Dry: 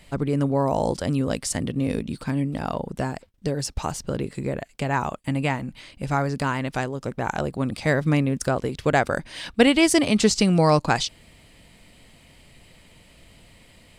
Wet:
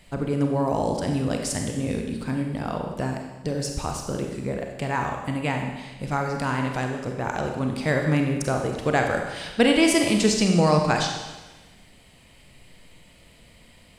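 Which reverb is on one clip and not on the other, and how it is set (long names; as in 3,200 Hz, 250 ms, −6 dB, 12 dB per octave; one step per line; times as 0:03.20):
four-comb reverb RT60 1.2 s, combs from 31 ms, DRR 2.5 dB
level −2.5 dB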